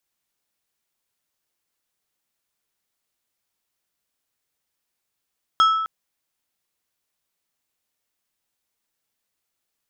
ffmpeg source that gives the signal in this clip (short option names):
-f lavfi -i "aevalsrc='0.282*pow(10,-3*t/1.13)*sin(2*PI*1310*t)+0.1*pow(10,-3*t/0.595)*sin(2*PI*3275*t)+0.0355*pow(10,-3*t/0.428)*sin(2*PI*5240*t)+0.0126*pow(10,-3*t/0.366)*sin(2*PI*6550*t)+0.00447*pow(10,-3*t/0.305)*sin(2*PI*8515*t)':d=0.26:s=44100"